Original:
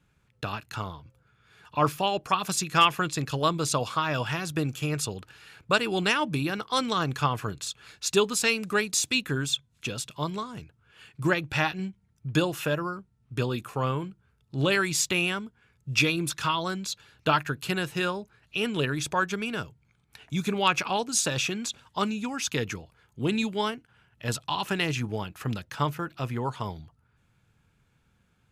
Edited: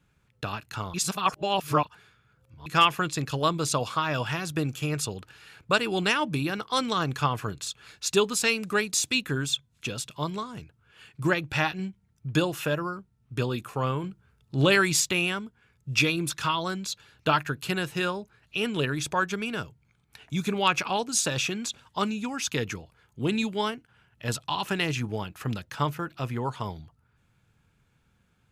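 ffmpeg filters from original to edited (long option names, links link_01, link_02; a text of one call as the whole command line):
ffmpeg -i in.wav -filter_complex "[0:a]asplit=5[link_01][link_02][link_03][link_04][link_05];[link_01]atrim=end=0.942[link_06];[link_02]atrim=start=0.938:end=2.662,asetpts=PTS-STARTPTS,areverse[link_07];[link_03]atrim=start=2.658:end=14.042[link_08];[link_04]atrim=start=14.038:end=15.002,asetpts=PTS-STARTPTS,volume=3.5dB[link_09];[link_05]atrim=start=14.998[link_10];[link_06][link_07]acrossfade=duration=0.004:curve1=hsin:curve2=hsin[link_11];[link_11][link_08]acrossfade=duration=0.004:curve1=hsin:curve2=hsin[link_12];[link_12][link_09]acrossfade=duration=0.004:curve1=hsin:curve2=hsin[link_13];[link_13][link_10]acrossfade=duration=0.004:curve1=hsin:curve2=hsin" out.wav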